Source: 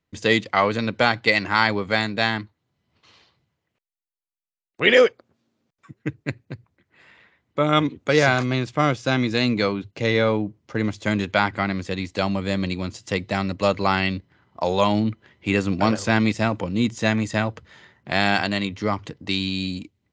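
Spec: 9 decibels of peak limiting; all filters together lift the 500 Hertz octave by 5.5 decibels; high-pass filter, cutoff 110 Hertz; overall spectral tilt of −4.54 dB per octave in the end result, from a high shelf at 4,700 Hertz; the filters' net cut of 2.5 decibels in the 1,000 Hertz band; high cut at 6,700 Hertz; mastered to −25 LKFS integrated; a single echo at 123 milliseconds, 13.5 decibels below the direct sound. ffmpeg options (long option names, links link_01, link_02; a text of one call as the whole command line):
ffmpeg -i in.wav -af "highpass=110,lowpass=6700,equalizer=frequency=500:width_type=o:gain=8,equalizer=frequency=1000:width_type=o:gain=-6.5,highshelf=frequency=4700:gain=-4,alimiter=limit=-9dB:level=0:latency=1,aecho=1:1:123:0.211,volume=-2.5dB" out.wav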